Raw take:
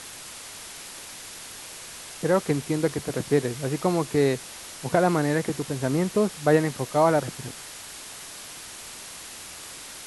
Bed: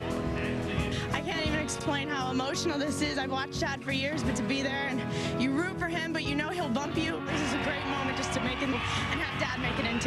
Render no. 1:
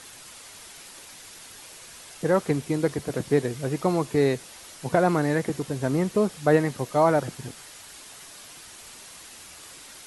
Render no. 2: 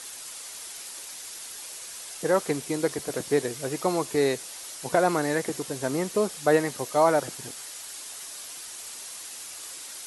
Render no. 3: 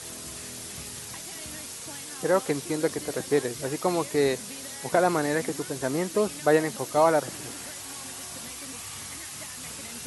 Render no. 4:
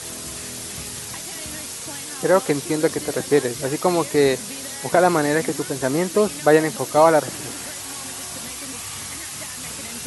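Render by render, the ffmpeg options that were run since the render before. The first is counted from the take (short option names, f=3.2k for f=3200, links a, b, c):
-af "afftdn=nr=6:nf=-41"
-af "bass=f=250:g=-10,treble=f=4k:g=7"
-filter_complex "[1:a]volume=-14.5dB[a];[0:a][a]amix=inputs=2:normalize=0"
-af "volume=6.5dB,alimiter=limit=-3dB:level=0:latency=1"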